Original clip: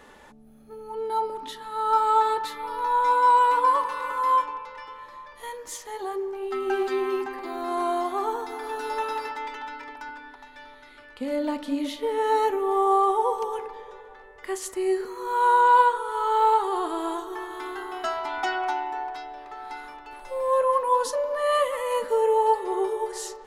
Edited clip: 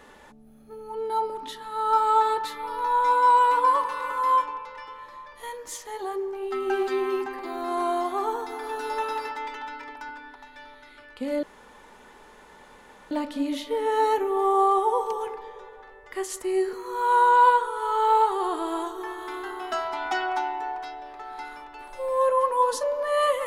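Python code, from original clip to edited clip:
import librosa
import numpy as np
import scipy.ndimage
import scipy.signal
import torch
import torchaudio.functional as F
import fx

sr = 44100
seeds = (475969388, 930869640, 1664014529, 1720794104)

y = fx.edit(x, sr, fx.insert_room_tone(at_s=11.43, length_s=1.68), tone=tone)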